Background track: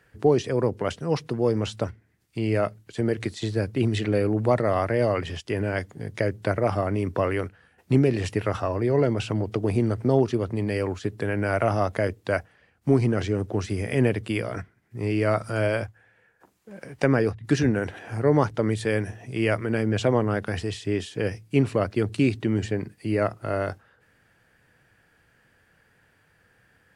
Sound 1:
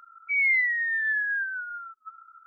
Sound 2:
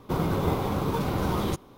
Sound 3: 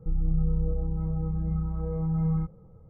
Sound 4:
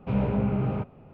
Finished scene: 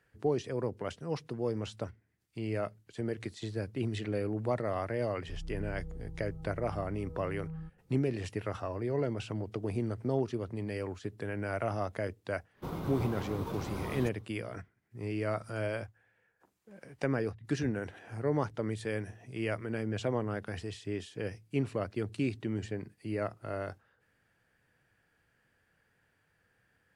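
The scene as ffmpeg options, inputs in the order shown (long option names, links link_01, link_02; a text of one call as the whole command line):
ffmpeg -i bed.wav -i cue0.wav -i cue1.wav -i cue2.wav -filter_complex "[0:a]volume=-10.5dB[link_01];[3:a]atrim=end=2.89,asetpts=PTS-STARTPTS,volume=-16dB,afade=type=in:duration=0.004:curve=hsin,afade=type=out:start_time=2.886:duration=0.004:curve=hsin,adelay=5230[link_02];[2:a]atrim=end=1.77,asetpts=PTS-STARTPTS,volume=-12dB,afade=type=in:duration=0.1,afade=type=out:start_time=1.67:duration=0.1,adelay=12530[link_03];[link_01][link_02][link_03]amix=inputs=3:normalize=0" out.wav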